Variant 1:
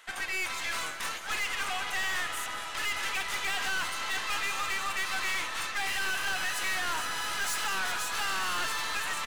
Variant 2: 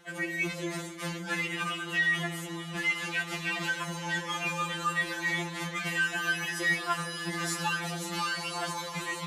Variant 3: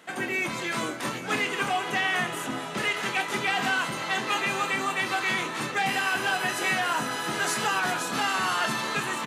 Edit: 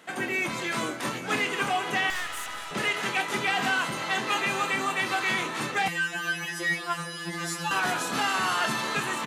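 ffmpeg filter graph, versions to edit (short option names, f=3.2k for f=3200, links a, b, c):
-filter_complex "[2:a]asplit=3[a][b][c];[a]atrim=end=2.102[d];[0:a]atrim=start=2.098:end=2.712[e];[b]atrim=start=2.708:end=5.882[f];[1:a]atrim=start=5.878:end=7.712[g];[c]atrim=start=7.708[h];[d][e]acrossfade=d=0.004:c1=hsin:c2=hsin[i];[i][f]acrossfade=d=0.004:c1=hsin:c2=hsin[j];[j][g]acrossfade=d=0.004:c1=hsin:c2=hsin[k];[k][h]acrossfade=d=0.004:c1=hsin:c2=hsin"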